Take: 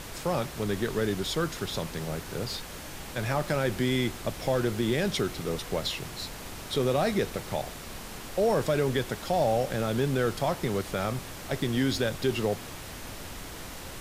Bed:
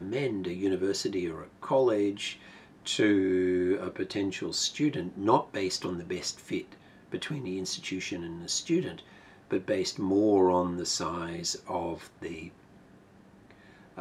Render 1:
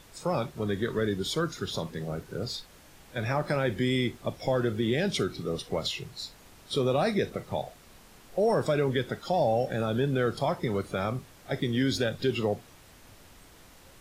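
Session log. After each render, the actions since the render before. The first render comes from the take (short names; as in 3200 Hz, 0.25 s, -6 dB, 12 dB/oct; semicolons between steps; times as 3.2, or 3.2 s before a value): noise print and reduce 13 dB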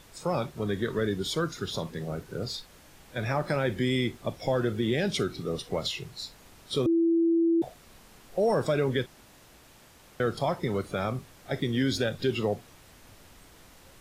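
6.86–7.62 bleep 333 Hz -20 dBFS; 9.06–10.2 room tone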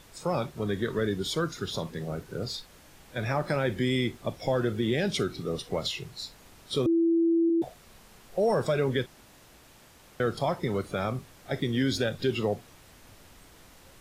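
7.49–8.79 notch 290 Hz, Q 7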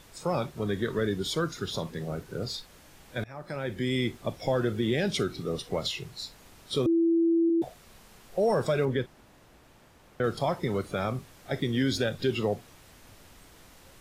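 3.24–4.07 fade in, from -23 dB; 8.85–10.24 high shelf 2600 Hz -9 dB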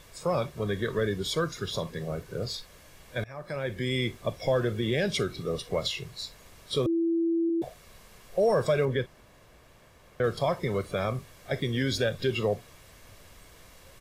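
bell 2100 Hz +3 dB 0.22 oct; comb 1.8 ms, depth 37%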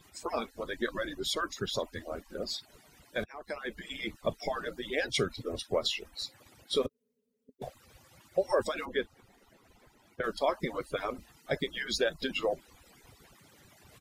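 median-filter separation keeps percussive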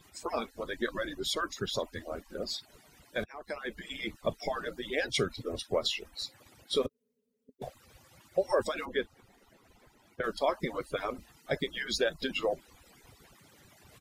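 nothing audible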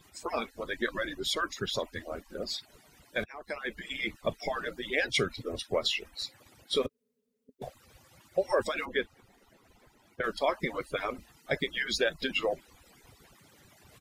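dynamic EQ 2200 Hz, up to +6 dB, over -49 dBFS, Q 1.4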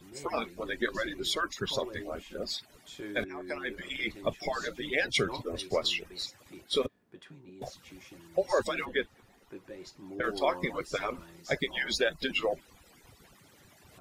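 add bed -17 dB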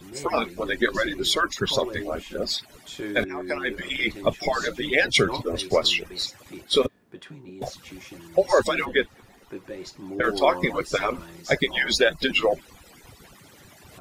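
gain +8.5 dB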